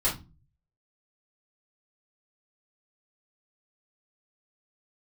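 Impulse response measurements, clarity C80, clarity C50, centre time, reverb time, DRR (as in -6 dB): 17.5 dB, 9.5 dB, 25 ms, 0.30 s, -8.0 dB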